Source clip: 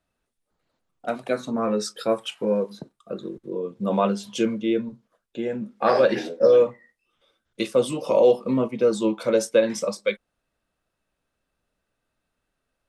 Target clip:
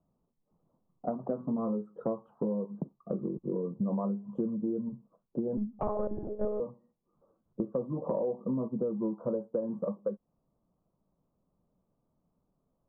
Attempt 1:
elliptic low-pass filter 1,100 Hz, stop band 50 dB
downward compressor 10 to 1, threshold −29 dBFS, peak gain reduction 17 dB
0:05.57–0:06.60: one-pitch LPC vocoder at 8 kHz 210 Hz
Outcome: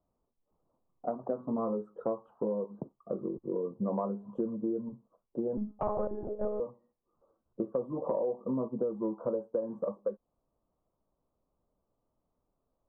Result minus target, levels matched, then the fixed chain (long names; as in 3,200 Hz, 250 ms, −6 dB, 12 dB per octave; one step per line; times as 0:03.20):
125 Hz band −4.0 dB
elliptic low-pass filter 1,100 Hz, stop band 50 dB
parametric band 170 Hz +11.5 dB 1.1 octaves
downward compressor 10 to 1, threshold −29 dBFS, peak gain reduction 18 dB
0:05.57–0:06.60: one-pitch LPC vocoder at 8 kHz 210 Hz